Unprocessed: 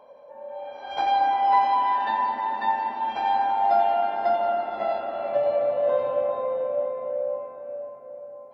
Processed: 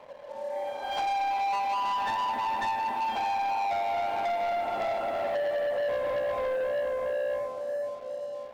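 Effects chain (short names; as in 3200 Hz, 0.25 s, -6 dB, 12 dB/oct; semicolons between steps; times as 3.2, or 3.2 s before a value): compressor 4:1, threshold -25 dBFS, peak gain reduction 9 dB; sample leveller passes 3; gain -7.5 dB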